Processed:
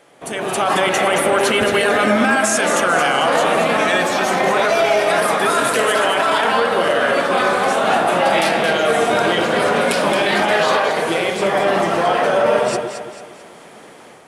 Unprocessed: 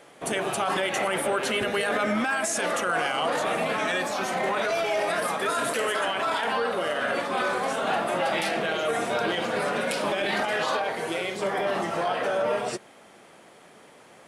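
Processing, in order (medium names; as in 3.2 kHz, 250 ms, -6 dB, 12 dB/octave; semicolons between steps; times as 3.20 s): level rider gain up to 9 dB; on a send: echo whose repeats swap between lows and highs 111 ms, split 1.3 kHz, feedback 64%, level -3.5 dB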